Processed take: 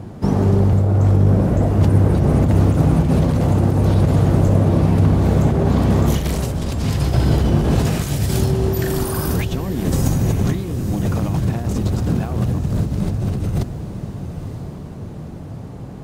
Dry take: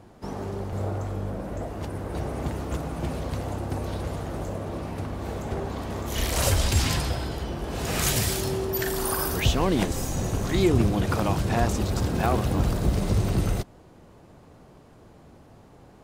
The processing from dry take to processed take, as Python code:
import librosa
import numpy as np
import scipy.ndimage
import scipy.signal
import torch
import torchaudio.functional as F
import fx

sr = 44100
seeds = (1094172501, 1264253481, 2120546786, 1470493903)

y = fx.over_compress(x, sr, threshold_db=-31.0, ratio=-1.0)
y = fx.peak_eq(y, sr, hz=130.0, db=13.0, octaves=2.6)
y = fx.echo_diffused(y, sr, ms=953, feedback_pct=43, wet_db=-10.0)
y = F.gain(torch.from_numpy(y), 4.5).numpy()